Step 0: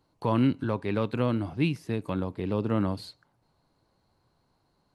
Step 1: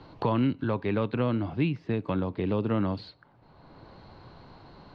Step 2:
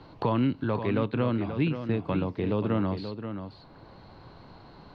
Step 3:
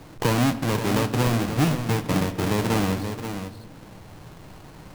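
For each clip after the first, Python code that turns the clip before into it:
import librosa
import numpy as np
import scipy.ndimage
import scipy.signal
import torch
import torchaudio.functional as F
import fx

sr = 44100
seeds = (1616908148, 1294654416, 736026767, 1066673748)

y1 = scipy.signal.sosfilt(scipy.signal.butter(4, 4100.0, 'lowpass', fs=sr, output='sos'), x)
y1 = fx.band_squash(y1, sr, depth_pct=70)
y2 = y1 + 10.0 ** (-9.0 / 20.0) * np.pad(y1, (int(531 * sr / 1000.0), 0))[:len(y1)]
y3 = fx.halfwave_hold(y2, sr)
y3 = fx.room_shoebox(y3, sr, seeds[0], volume_m3=1200.0, walls='mixed', distance_m=0.5)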